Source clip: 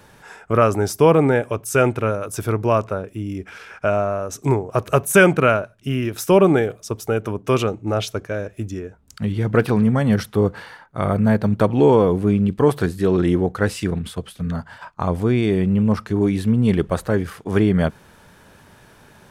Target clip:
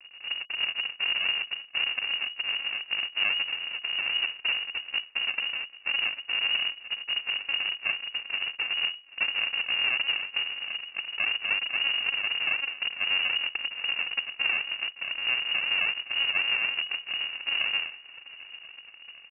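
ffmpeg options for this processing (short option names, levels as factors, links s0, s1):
-af "lowshelf=f=120:g=-7,bandreject=f=50:t=h:w=6,bandreject=f=100:t=h:w=6,bandreject=f=150:t=h:w=6,bandreject=f=200:t=h:w=6,bandreject=f=250:t=h:w=6,acompressor=threshold=0.0355:ratio=16,alimiter=level_in=1.5:limit=0.0631:level=0:latency=1:release=45,volume=0.668,aresample=11025,acrusher=samples=31:mix=1:aa=0.000001:lfo=1:lforange=18.6:lforate=3.9,aresample=44100,aeval=exprs='sgn(val(0))*max(abs(val(0))-0.00211,0)':c=same,aecho=1:1:788|1576|2364:0.0944|0.0359|0.0136,lowpass=f=2500:t=q:w=0.5098,lowpass=f=2500:t=q:w=0.6013,lowpass=f=2500:t=q:w=0.9,lowpass=f=2500:t=q:w=2.563,afreqshift=-2900,volume=2.66"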